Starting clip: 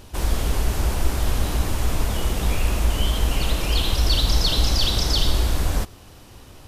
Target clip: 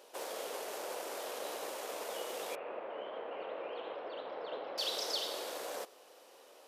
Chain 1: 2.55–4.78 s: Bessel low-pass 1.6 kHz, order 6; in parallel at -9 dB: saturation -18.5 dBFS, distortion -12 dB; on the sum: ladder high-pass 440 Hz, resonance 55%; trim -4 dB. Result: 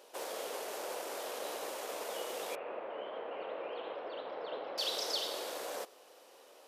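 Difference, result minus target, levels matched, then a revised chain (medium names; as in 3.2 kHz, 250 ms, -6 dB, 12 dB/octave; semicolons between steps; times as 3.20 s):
saturation: distortion -5 dB
2.55–4.78 s: Bessel low-pass 1.6 kHz, order 6; in parallel at -9 dB: saturation -25.5 dBFS, distortion -7 dB; on the sum: ladder high-pass 440 Hz, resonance 55%; trim -4 dB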